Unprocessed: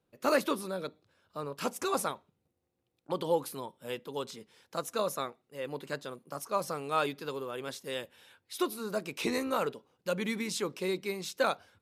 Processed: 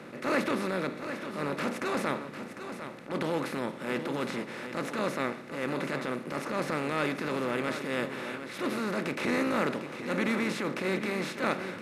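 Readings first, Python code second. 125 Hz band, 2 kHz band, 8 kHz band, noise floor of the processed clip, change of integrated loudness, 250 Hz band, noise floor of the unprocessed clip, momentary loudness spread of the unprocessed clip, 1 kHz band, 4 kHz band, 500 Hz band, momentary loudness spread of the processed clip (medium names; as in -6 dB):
+6.5 dB, +6.5 dB, -4.5 dB, -43 dBFS, +2.5 dB, +6.5 dB, -81 dBFS, 11 LU, +1.0 dB, 0.0 dB, +1.0 dB, 8 LU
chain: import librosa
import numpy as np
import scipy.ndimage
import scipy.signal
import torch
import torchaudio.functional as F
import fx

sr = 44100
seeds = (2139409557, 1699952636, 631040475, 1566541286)

y = fx.bin_compress(x, sr, power=0.4)
y = fx.high_shelf(y, sr, hz=9400.0, db=-11.0)
y = fx.transient(y, sr, attack_db=-8, sustain_db=-1)
y = fx.graphic_eq_10(y, sr, hz=(125, 250, 2000), db=(10, 8, 9))
y = y + 10.0 ** (-10.0 / 20.0) * np.pad(y, (int(751 * sr / 1000.0), 0))[:len(y)]
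y = y * 10.0 ** (-7.5 / 20.0)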